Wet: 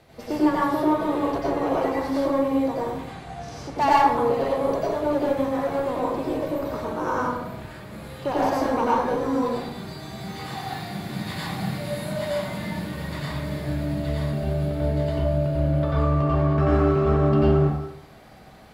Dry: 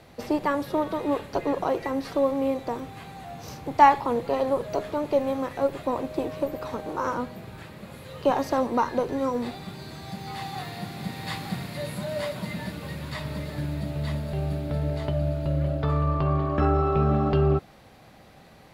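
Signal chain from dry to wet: 2.97–3.77 LPF 10000 Hz 24 dB/oct; in parallel at -6 dB: wavefolder -18 dBFS; on the sum: plate-style reverb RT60 0.76 s, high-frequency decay 0.6×, pre-delay 80 ms, DRR -6.5 dB; gain -7.5 dB

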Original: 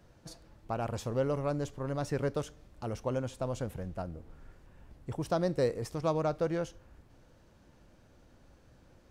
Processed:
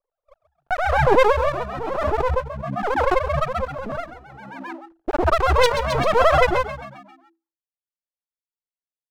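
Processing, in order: sine-wave speech; steep low-pass 890 Hz 96 dB/oct; gate -56 dBFS, range -49 dB; added harmonics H 3 -19 dB, 5 -22 dB, 6 -10 dB, 7 -31 dB, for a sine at -17 dBFS; AGC gain up to 13.5 dB; phaser 0.8 Hz, delay 1.5 ms, feedback 38%; half-wave rectifier; low shelf 280 Hz -5.5 dB; frequency-shifting echo 0.133 s, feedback 51%, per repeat +66 Hz, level -12 dB; backwards sustainer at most 27 dB/s

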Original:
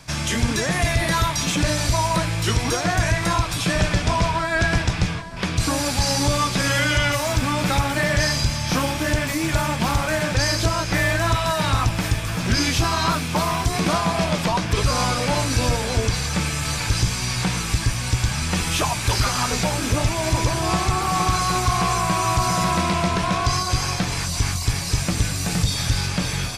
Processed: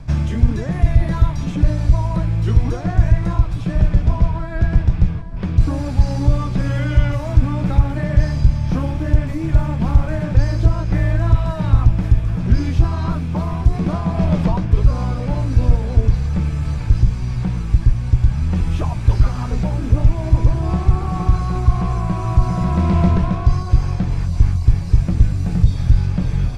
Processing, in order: tilt -4.5 dB/oct; AGC; gain -1 dB

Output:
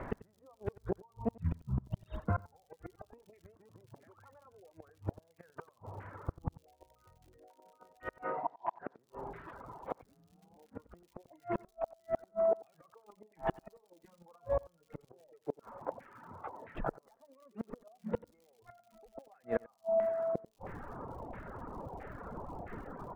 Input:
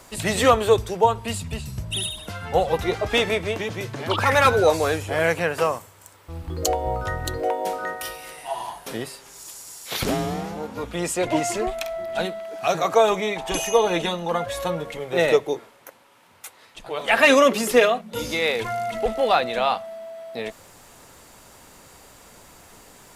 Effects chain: 0.91–2.46 expander -28 dBFS; air absorption 420 m; LFO low-pass saw down 1.5 Hz 800–2000 Hz; tilt shelf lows +6.5 dB, about 1100 Hz; compressor 12:1, threshold -27 dBFS, peak gain reduction 21 dB; flipped gate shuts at -24 dBFS, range -32 dB; crackle 120/s -56 dBFS; echo 91 ms -11 dB; reverb removal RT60 1.1 s; 8.24–8.99 BPF 200–2900 Hz; gain +3.5 dB

